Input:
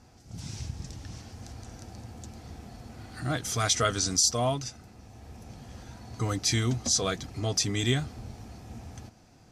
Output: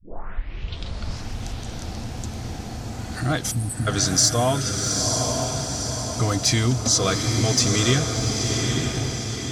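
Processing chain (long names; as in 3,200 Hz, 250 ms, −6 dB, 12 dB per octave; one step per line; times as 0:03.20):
turntable start at the beginning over 1.28 s
in parallel at −0.5 dB: downward compressor, threshold −36 dBFS, peak gain reduction 16 dB
on the sum: time-frequency box erased 0:03.51–0:03.87, 330–7,700 Hz
feedback delay with all-pass diffusion 934 ms, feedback 42%, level −5 dB
soft clipping −9.5 dBFS, distortion −30 dB
on a send: feedback delay with all-pass diffusion 710 ms, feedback 42%, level −7 dB
on the sum: level +4.5 dB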